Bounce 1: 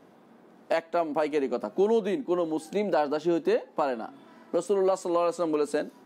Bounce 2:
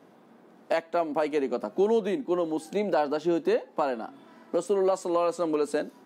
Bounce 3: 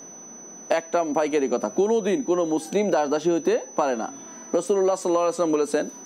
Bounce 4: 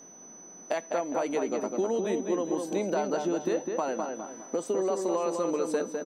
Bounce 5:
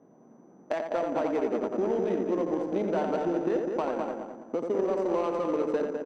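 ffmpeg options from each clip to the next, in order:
-af "highpass=95"
-af "acompressor=threshold=-25dB:ratio=6,aeval=exprs='val(0)+0.00398*sin(2*PI*6000*n/s)':c=same,volume=7.5dB"
-filter_complex "[0:a]asplit=2[a][b];[b]adelay=204,lowpass=f=2.4k:p=1,volume=-4dB,asplit=2[c][d];[d]adelay=204,lowpass=f=2.4k:p=1,volume=0.35,asplit=2[e][f];[f]adelay=204,lowpass=f=2.4k:p=1,volume=0.35,asplit=2[g][h];[h]adelay=204,lowpass=f=2.4k:p=1,volume=0.35[i];[a][c][e][g][i]amix=inputs=5:normalize=0,volume=-8dB"
-filter_complex "[0:a]asplit=2[a][b];[b]adelay=86,lowpass=f=3.4k:p=1,volume=-4dB,asplit=2[c][d];[d]adelay=86,lowpass=f=3.4k:p=1,volume=0.33,asplit=2[e][f];[f]adelay=86,lowpass=f=3.4k:p=1,volume=0.33,asplit=2[g][h];[h]adelay=86,lowpass=f=3.4k:p=1,volume=0.33[i];[a][c][e][g][i]amix=inputs=5:normalize=0,adynamicsmooth=sensitivity=2:basefreq=830"

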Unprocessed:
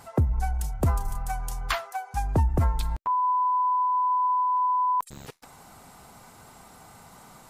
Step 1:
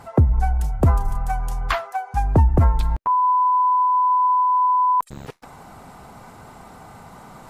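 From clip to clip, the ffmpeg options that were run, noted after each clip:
-af "highshelf=f=3k:g=-12,areverse,acompressor=mode=upward:threshold=-45dB:ratio=2.5,areverse,volume=7.5dB"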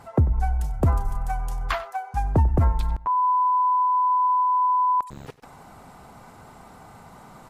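-af "aecho=1:1:95:0.126,volume=-4dB"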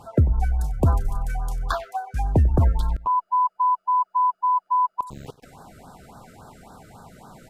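-af "afftfilt=real='re*(1-between(b*sr/1024,870*pow(2500/870,0.5+0.5*sin(2*PI*3.6*pts/sr))/1.41,870*pow(2500/870,0.5+0.5*sin(2*PI*3.6*pts/sr))*1.41))':imag='im*(1-between(b*sr/1024,870*pow(2500/870,0.5+0.5*sin(2*PI*3.6*pts/sr))/1.41,870*pow(2500/870,0.5+0.5*sin(2*PI*3.6*pts/sr))*1.41))':win_size=1024:overlap=0.75,volume=1.5dB"

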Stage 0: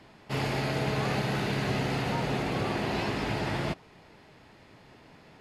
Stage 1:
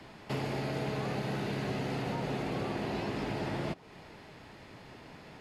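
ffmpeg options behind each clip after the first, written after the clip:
-filter_complex "[0:a]acrossover=split=140|740[a][b][c];[a]acompressor=threshold=-50dB:ratio=4[d];[b]acompressor=threshold=-38dB:ratio=4[e];[c]acompressor=threshold=-47dB:ratio=4[f];[d][e][f]amix=inputs=3:normalize=0,volume=3.5dB"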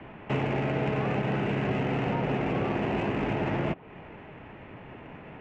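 -af "highshelf=f=3.8k:t=q:w=3:g=-11,adynamicsmooth=sensitivity=2:basefreq=1.8k,volume=6.5dB"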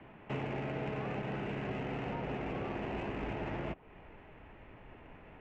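-af "asubboost=boost=5.5:cutoff=59,volume=-9dB"

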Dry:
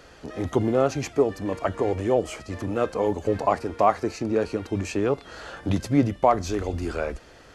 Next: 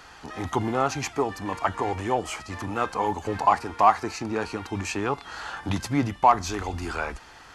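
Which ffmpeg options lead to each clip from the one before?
-filter_complex "[0:a]lowshelf=f=700:t=q:w=3:g=-6,asplit=2[a][b];[b]asoftclip=type=tanh:threshold=-18.5dB,volume=-7dB[c];[a][c]amix=inputs=2:normalize=0"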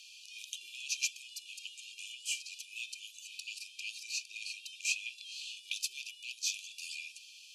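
-af "afftfilt=real='re*(1-between(b*sr/4096,270,2400))':imag='im*(1-between(b*sr/4096,270,2400))':win_size=4096:overlap=0.75,afreqshift=-36,afftfilt=real='re*gte(b*sr/1024,350*pow(2100/350,0.5+0.5*sin(2*PI*3.8*pts/sr)))':imag='im*gte(b*sr/1024,350*pow(2100/350,0.5+0.5*sin(2*PI*3.8*pts/sr)))':win_size=1024:overlap=0.75,volume=1dB"

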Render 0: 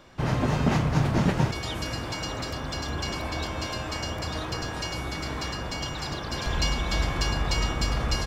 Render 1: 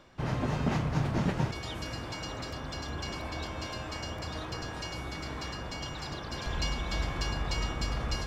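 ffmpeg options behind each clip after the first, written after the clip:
-af "highshelf=f=8.4k:g=-5,areverse,acompressor=mode=upward:threshold=-30dB:ratio=2.5,areverse,volume=-6dB"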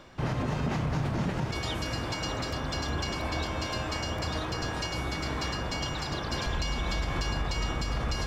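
-af "alimiter=level_in=3dB:limit=-24dB:level=0:latency=1:release=118,volume=-3dB,volume=6dB"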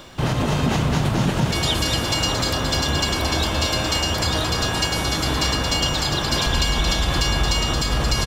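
-filter_complex "[0:a]aexciter=amount=2.3:drive=3.8:freq=2.9k,asplit=2[a][b];[b]aecho=0:1:224:0.501[c];[a][c]amix=inputs=2:normalize=0,volume=8.5dB"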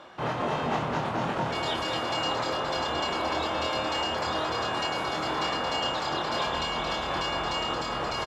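-filter_complex "[0:a]bandpass=f=900:t=q:w=0.82:csg=0,asplit=2[a][b];[b]adelay=25,volume=-3.5dB[c];[a][c]amix=inputs=2:normalize=0,volume=-2.5dB"

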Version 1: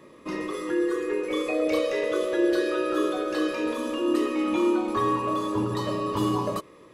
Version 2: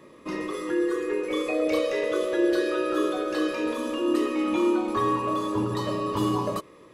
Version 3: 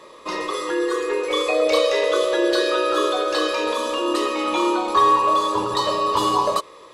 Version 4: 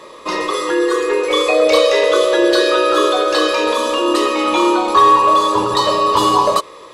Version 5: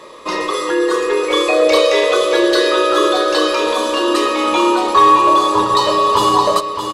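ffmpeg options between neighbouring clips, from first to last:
-af anull
-af "equalizer=f=125:t=o:w=1:g=-8,equalizer=f=250:t=o:w=1:g=-8,equalizer=f=500:t=o:w=1:g=5,equalizer=f=1k:t=o:w=1:g=9,equalizer=f=4k:t=o:w=1:g=11,equalizer=f=8k:t=o:w=1:g=7,volume=2dB"
-af "acontrast=31,volume=1.5dB"
-af "aecho=1:1:620:0.376"

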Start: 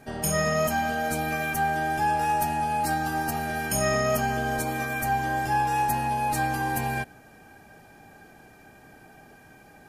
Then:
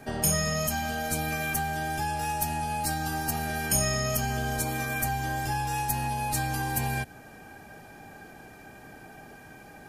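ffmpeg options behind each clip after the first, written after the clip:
-filter_complex "[0:a]acrossover=split=150|3000[a][b][c];[b]acompressor=threshold=-34dB:ratio=6[d];[a][d][c]amix=inputs=3:normalize=0,volume=3.5dB"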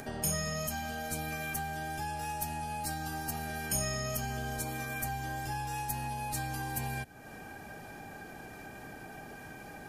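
-af "acompressor=mode=upward:threshold=-30dB:ratio=2.5,volume=-7dB"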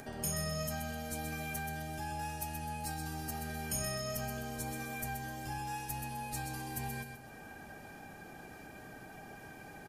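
-af "aecho=1:1:128|256|384|512:0.473|0.18|0.0683|0.026,volume=-4.5dB"

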